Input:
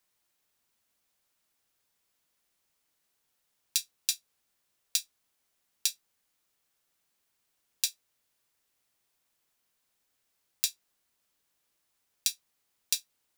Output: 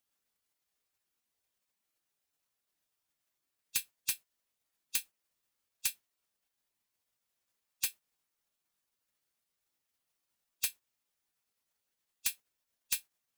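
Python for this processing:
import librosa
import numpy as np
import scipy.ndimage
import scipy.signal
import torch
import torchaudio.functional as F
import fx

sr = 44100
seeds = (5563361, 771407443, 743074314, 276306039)

y = 10.0 ** (-18.0 / 20.0) * np.tanh(x / 10.0 ** (-18.0 / 20.0))
y = fx.spec_gate(y, sr, threshold_db=-10, keep='weak')
y = y * librosa.db_to_amplitude(4.0)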